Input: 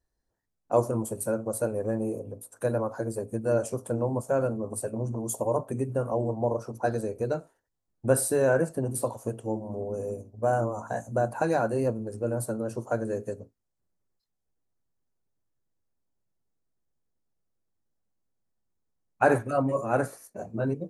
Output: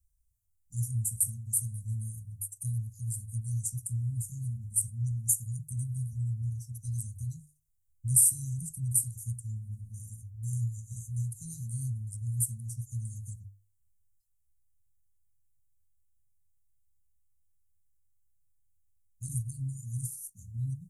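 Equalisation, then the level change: inverse Chebyshev band-stop 390–2200 Hz, stop band 70 dB; hum notches 50/100/150 Hz; +9.0 dB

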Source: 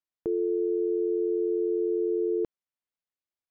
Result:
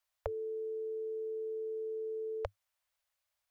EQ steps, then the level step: Chebyshev band-stop 100–550 Hz, order 4; +10.5 dB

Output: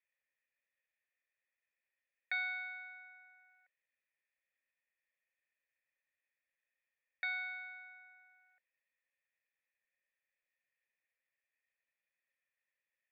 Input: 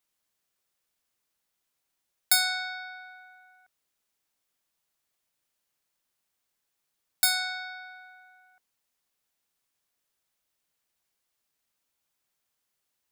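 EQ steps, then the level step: cascade formant filter e; tilt shelf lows -7.5 dB; peaking EQ 370 Hz -12.5 dB 2.4 oct; +10.5 dB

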